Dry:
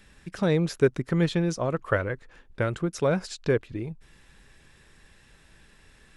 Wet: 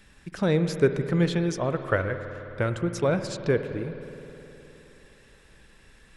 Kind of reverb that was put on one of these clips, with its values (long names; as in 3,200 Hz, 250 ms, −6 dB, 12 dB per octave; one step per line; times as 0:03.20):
spring reverb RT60 3.5 s, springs 52 ms, chirp 80 ms, DRR 8.5 dB